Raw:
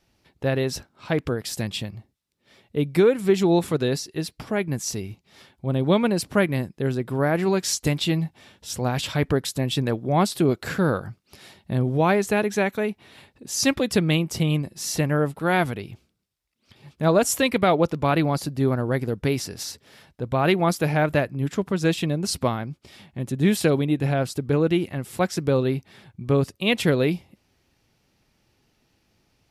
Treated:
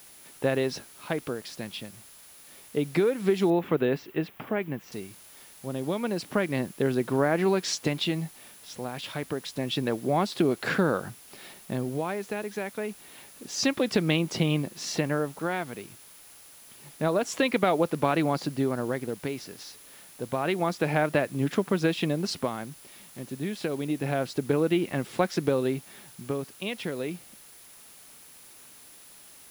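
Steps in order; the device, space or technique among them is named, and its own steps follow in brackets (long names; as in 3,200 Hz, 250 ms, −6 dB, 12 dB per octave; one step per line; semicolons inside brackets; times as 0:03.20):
medium wave at night (band-pass filter 190–4,300 Hz; downward compressor, threshold −23 dBFS, peak gain reduction 9.5 dB; amplitude tremolo 0.28 Hz, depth 66%; steady tone 10,000 Hz −57 dBFS; white noise bed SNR 23 dB)
0:03.50–0:04.92: flat-topped bell 6,500 Hz −15.5 dB
level +3.5 dB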